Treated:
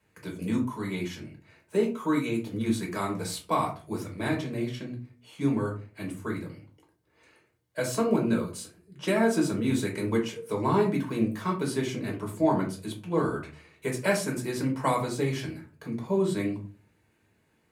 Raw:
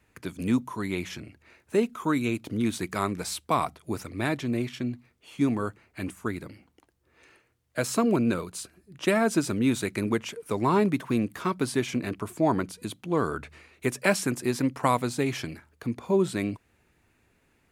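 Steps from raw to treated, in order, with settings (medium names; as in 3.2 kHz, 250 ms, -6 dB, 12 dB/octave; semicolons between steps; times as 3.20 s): high-pass 93 Hz; reverberation RT60 0.40 s, pre-delay 3 ms, DRR -1.5 dB; trim -7.5 dB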